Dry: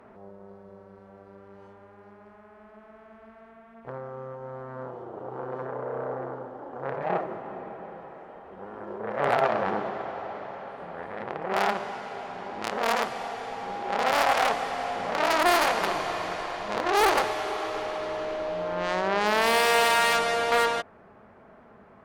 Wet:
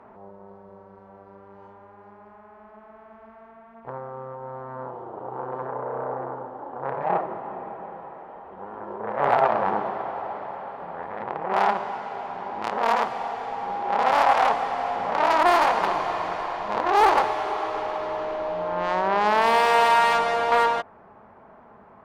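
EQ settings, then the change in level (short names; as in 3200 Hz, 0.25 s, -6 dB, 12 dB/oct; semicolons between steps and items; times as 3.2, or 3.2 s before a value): LPF 3200 Hz 6 dB/oct; bell 920 Hz +8 dB 0.71 oct; 0.0 dB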